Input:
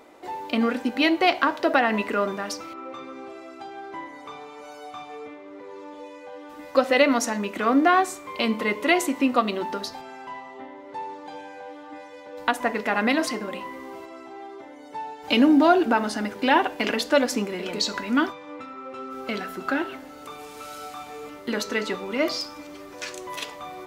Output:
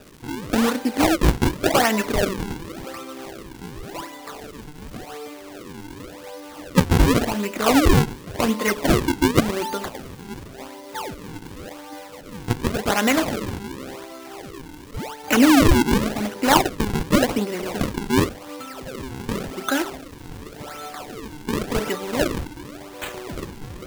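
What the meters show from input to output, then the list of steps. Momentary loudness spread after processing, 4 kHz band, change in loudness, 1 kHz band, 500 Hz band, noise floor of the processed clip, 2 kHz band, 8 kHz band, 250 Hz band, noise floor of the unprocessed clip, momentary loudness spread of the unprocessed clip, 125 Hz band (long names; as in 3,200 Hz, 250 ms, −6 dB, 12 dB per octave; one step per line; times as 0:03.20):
20 LU, +2.0 dB, +2.5 dB, −0.5 dB, +1.0 dB, −40 dBFS, 0.0 dB, +6.5 dB, +3.5 dB, −43 dBFS, 21 LU, can't be measured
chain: sample-and-hold swept by an LFO 41×, swing 160% 0.9 Hz
surface crackle 400 per second −39 dBFS
level +3 dB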